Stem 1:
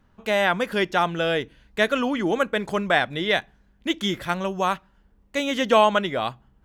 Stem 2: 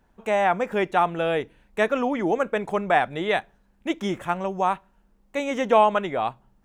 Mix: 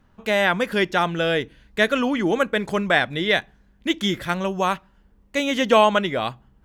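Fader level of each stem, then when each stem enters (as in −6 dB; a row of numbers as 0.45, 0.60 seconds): +2.0, −12.5 decibels; 0.00, 0.00 seconds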